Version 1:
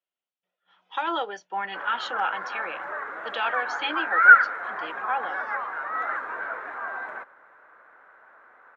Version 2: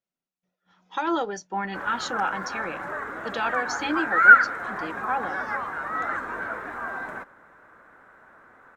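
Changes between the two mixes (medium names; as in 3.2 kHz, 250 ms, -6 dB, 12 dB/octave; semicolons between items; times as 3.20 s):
speech: add peaking EQ 3.1 kHz -9.5 dB 0.49 oct; master: remove three-band isolator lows -18 dB, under 420 Hz, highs -17 dB, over 3.7 kHz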